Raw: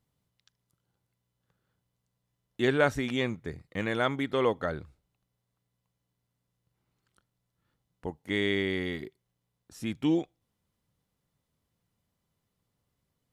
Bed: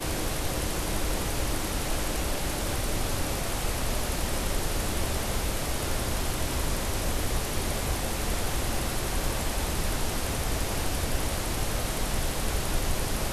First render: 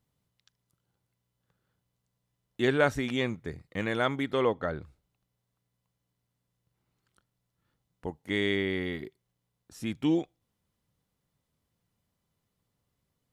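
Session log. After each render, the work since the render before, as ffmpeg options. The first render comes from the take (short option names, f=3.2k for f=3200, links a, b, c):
-filter_complex "[0:a]asettb=1/sr,asplit=3[a][b][c];[a]atrim=end=4.424[d];[b]atrim=start=4.42:end=4.82,asetpts=PTS-STARTPTS,afade=t=in:d=0.004:c=qsin,afade=t=out:st=0.396:d=0.004:c=qsin,lowpass=f=3.2k:p=1[e];[c]atrim=start=4.816[f];[d][e]acrossfade=d=0.004:c1=hsin:c2=qsin[g];[g][f]acrossfade=d=0.004:c1=qsin:c2=hsin,asettb=1/sr,asplit=3[h][i][j];[h]atrim=end=8.564[k];[i]atrim=start=8.56:end=9.05,asetpts=PTS-STARTPTS,afade=t=in:d=0.004:c=qsin,afade=t=out:st=0.486:d=0.004:c=qsin,equalizer=f=6.7k:w=1.1:g=-7.5[l];[j]atrim=start=9.046[m];[k][l]acrossfade=d=0.004:c1=hsin:c2=qsin[n];[n][m]acrossfade=d=0.004:c1=qsin:c2=hsin"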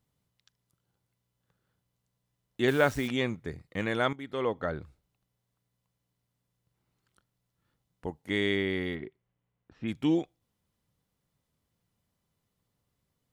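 -filter_complex "[0:a]asettb=1/sr,asplit=3[a][b][c];[a]atrim=end=2.684[d];[b]atrim=start=2.68:end=3.08,asetpts=PTS-STARTPTS,afade=t=in:d=0.004:c=qsin,afade=t=out:st=0.396:d=0.004:c=qsin,acrusher=bits=8:dc=4:mix=0:aa=0.000001[e];[c]atrim=start=3.076[f];[d][e]acrossfade=d=0.004:c1=hsin:c2=qsin[g];[g][f]acrossfade=d=0.004:c1=qsin:c2=hsin,asplit=3[h][i][j];[h]afade=t=out:st=8.94:d=0.02[k];[i]lowpass=f=2.9k:w=0.5412,lowpass=f=2.9k:w=1.3066,afade=t=in:st=8.94:d=0.02,afade=t=out:st=9.87:d=0.02[l];[j]afade=t=in:st=9.87:d=0.02[m];[k][l][m]amix=inputs=3:normalize=0,asplit=2[n][o];[n]atrim=end=4.13,asetpts=PTS-STARTPTS,afade=t=out:st=4.126:d=0.004:c=hsin:silence=0.177828[p];[o]atrim=start=4.13,asetpts=PTS-STARTPTS,afade=t=in:d=0.56:silence=0.177828[q];[p][q]concat=n=2:v=0:a=1"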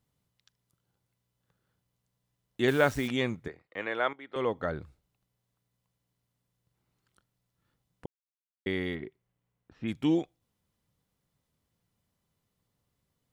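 -filter_complex "[0:a]asettb=1/sr,asplit=3[a][b][c];[a]atrim=end=3.484[d];[b]atrim=start=3.48:end=4.36,asetpts=PTS-STARTPTS,afade=t=in:d=0.004:c=qsin,afade=t=out:st=0.876:d=0.004:c=qsin,acrossover=split=360 3500:gain=0.112 1 0.112[e][f][g];[e][f][g]amix=inputs=3:normalize=0[h];[c]atrim=start=4.356[i];[d][h]acrossfade=d=0.004:c1=hsin:c2=qsin[j];[j][i]acrossfade=d=0.004:c1=qsin:c2=hsin,asplit=3[k][l][m];[k]atrim=end=8.06,asetpts=PTS-STARTPTS,afade=t=out:st=8.056:d=0.004:c=hsin[n];[l]atrim=start=8.06:end=8.66,asetpts=PTS-STARTPTS,volume=0[o];[m]atrim=start=8.66,asetpts=PTS-STARTPTS,afade=t=in:d=0.004:c=hsin[p];[n][o][p]concat=n=3:v=0:a=1"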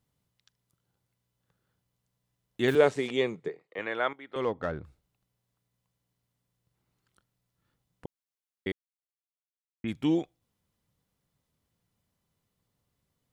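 -filter_complex "[0:a]asettb=1/sr,asplit=3[a][b][c];[a]atrim=end=2.754[d];[b]atrim=start=2.75:end=3.79,asetpts=PTS-STARTPTS,afade=t=in:d=0.004:c=qsin,afade=t=out:st=1.036:d=0.004:c=qsin,highpass=f=150:w=0.5412,highpass=f=150:w=1.3066,equalizer=f=240:t=q:w=4:g=-6,equalizer=f=430:t=q:w=4:g=10,equalizer=f=1.5k:t=q:w=4:g=-6,equalizer=f=5.7k:t=q:w=4:g=-5,lowpass=f=8.7k:w=0.5412,lowpass=f=8.7k:w=1.3066[e];[c]atrim=start=3.786[f];[d][e]acrossfade=d=0.004:c1=hsin:c2=qsin[g];[g][f]acrossfade=d=0.004:c1=qsin:c2=hsin,asplit=3[h][i][j];[h]afade=t=out:st=4.41:d=0.02[k];[i]adynamicsmooth=sensitivity=5.5:basefreq=2.4k,afade=t=in:st=4.41:d=0.02,afade=t=out:st=4.83:d=0.02[l];[j]afade=t=in:st=4.83:d=0.02[m];[k][l][m]amix=inputs=3:normalize=0,asplit=3[n][o][p];[n]atrim=end=8.72,asetpts=PTS-STARTPTS,afade=t=out:st=8.716:d=0.004:c=hsin[q];[o]atrim=start=8.72:end=9.84,asetpts=PTS-STARTPTS,volume=0[r];[p]atrim=start=9.84,asetpts=PTS-STARTPTS,afade=t=in:d=0.004:c=hsin[s];[q][r][s]concat=n=3:v=0:a=1"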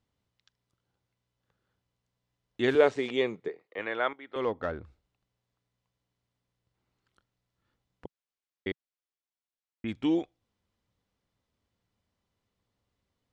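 -af "lowpass=5.5k,equalizer=f=150:t=o:w=0.4:g=-10"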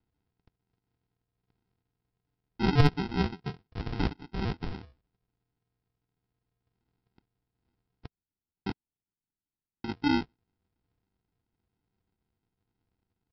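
-af "aresample=11025,acrusher=samples=19:mix=1:aa=0.000001,aresample=44100,asoftclip=type=hard:threshold=-11dB"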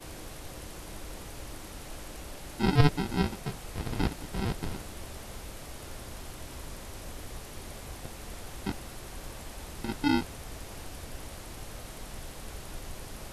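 -filter_complex "[1:a]volume=-13.5dB[a];[0:a][a]amix=inputs=2:normalize=0"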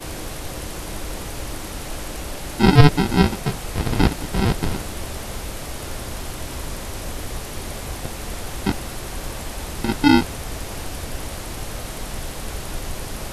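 -af "volume=12dB,alimiter=limit=-1dB:level=0:latency=1"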